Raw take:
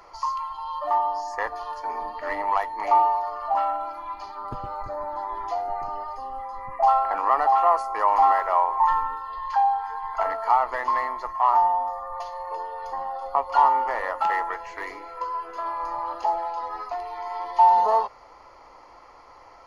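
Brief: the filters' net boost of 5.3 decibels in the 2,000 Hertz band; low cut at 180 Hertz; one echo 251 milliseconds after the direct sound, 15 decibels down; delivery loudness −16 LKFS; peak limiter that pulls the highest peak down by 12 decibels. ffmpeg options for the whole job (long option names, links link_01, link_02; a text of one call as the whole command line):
ffmpeg -i in.wav -af "highpass=180,equalizer=frequency=2000:width_type=o:gain=6,alimiter=limit=-17.5dB:level=0:latency=1,aecho=1:1:251:0.178,volume=11.5dB" out.wav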